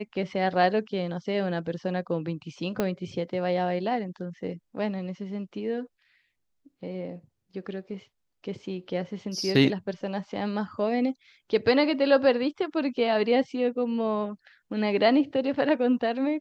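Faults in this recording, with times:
0:02.80: click −12 dBFS

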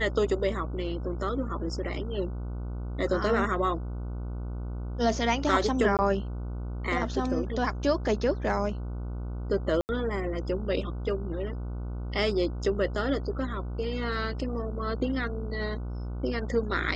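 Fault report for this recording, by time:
mains buzz 60 Hz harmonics 25 −34 dBFS
0:05.97–0:05.99: drop-out 18 ms
0:09.81–0:09.89: drop-out 79 ms

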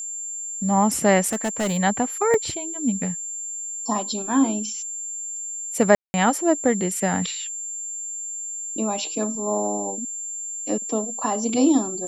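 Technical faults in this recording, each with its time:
whistle 7,300 Hz −29 dBFS
0:01.27–0:01.78: clipping −20 dBFS
0:02.34: drop-out 2.2 ms
0:05.95–0:06.14: drop-out 190 ms

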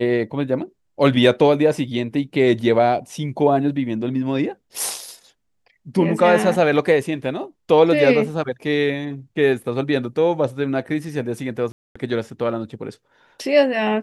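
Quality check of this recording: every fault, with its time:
0:11.72–0:11.96: drop-out 235 ms

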